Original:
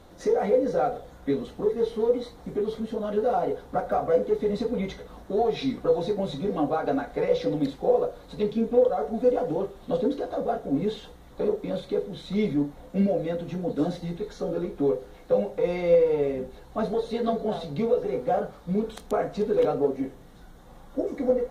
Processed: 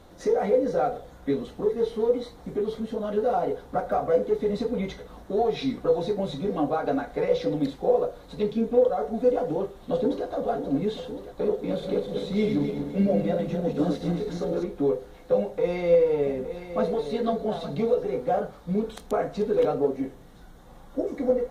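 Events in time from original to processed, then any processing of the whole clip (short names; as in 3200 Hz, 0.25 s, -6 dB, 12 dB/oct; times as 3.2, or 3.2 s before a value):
9.43–10.26 echo throw 0.53 s, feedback 75%, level -10 dB
11.56–14.64 regenerating reverse delay 0.128 s, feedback 59%, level -4.5 dB
15.4–17.95 echo 0.865 s -10.5 dB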